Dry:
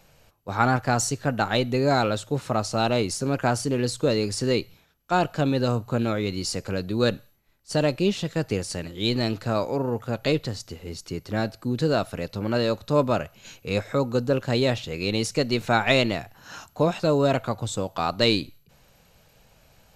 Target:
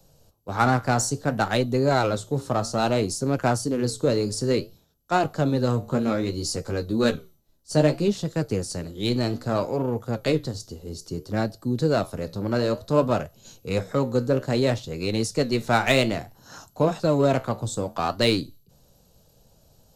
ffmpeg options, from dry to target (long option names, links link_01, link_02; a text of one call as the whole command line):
ffmpeg -i in.wav -filter_complex "[0:a]acrossover=split=150|660|3400[link_01][link_02][link_03][link_04];[link_03]adynamicsmooth=sensitivity=3.5:basefreq=920[link_05];[link_01][link_02][link_05][link_04]amix=inputs=4:normalize=0,flanger=delay=7.2:depth=8.9:regen=-72:speed=0.6:shape=sinusoidal,asettb=1/sr,asplit=3[link_06][link_07][link_08];[link_06]atrim=end=5.824[link_09];[link_07]atrim=start=5.82:end=8.08,asetpts=PTS-STARTPTS,afade=type=in:duration=0.004:curve=qsin,afade=type=out:start_time=2.256:duration=0.004:curve=qsin,asplit=2[link_10][link_11];[link_11]adelay=13,volume=-5dB[link_12];[link_10][link_12]amix=inputs=2:normalize=0,atrim=end_sample=99666[link_13];[link_08]atrim=start=8.076[link_14];[link_09][link_13]acrossfade=duration=0.004:curve1=hsin:curve2=qsin[link_15];[link_15][link_14]acrossfade=duration=0.004:curve1=qsin:curve2=hsin,volume=5dB" out.wav